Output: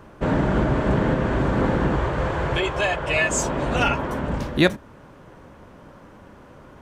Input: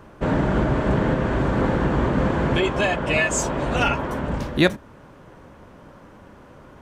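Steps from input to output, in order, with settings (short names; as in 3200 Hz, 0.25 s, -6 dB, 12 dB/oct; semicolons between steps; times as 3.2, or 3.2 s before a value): 1.96–3.21 bell 230 Hz -15 dB 0.74 oct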